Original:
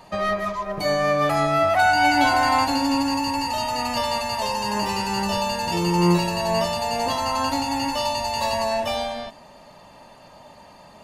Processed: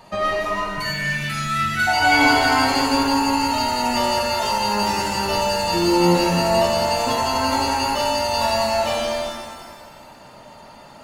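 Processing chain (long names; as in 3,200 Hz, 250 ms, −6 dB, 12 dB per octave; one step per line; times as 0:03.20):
gain on a spectral selection 0:00.69–0:01.87, 240–1,300 Hz −27 dB
reverb with rising layers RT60 1.6 s, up +7 semitones, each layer −8 dB, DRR −0.5 dB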